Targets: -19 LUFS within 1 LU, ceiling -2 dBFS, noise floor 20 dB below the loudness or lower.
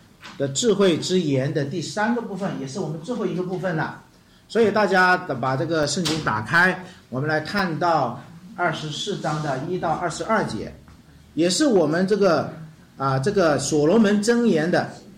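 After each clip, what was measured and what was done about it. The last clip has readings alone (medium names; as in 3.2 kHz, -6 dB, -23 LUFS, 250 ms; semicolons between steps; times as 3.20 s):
clipped samples 0.5%; clipping level -10.0 dBFS; dropouts 3; longest dropout 2.2 ms; loudness -21.5 LUFS; peak level -10.0 dBFS; loudness target -19.0 LUFS
-> clip repair -10 dBFS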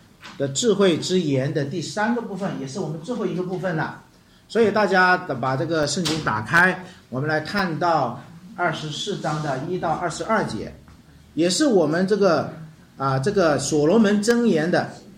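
clipped samples 0.0%; dropouts 3; longest dropout 2.2 ms
-> interpolate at 5.83/7.59/10.24 s, 2.2 ms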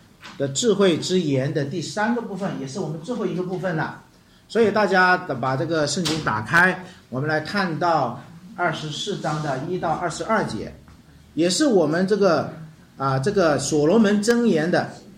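dropouts 0; loudness -21.5 LUFS; peak level -1.0 dBFS; loudness target -19.0 LUFS
-> trim +2.5 dB; peak limiter -2 dBFS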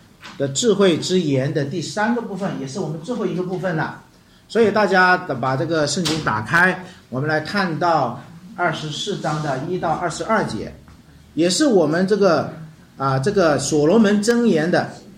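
loudness -19.0 LUFS; peak level -2.0 dBFS; noise floor -48 dBFS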